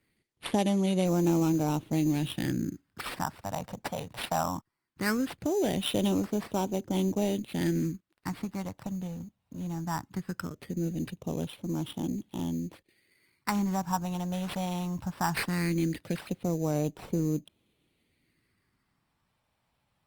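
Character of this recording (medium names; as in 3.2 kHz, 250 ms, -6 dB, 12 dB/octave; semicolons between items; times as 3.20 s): phasing stages 4, 0.19 Hz, lowest notch 350–1900 Hz; aliases and images of a low sample rate 6.6 kHz, jitter 0%; Opus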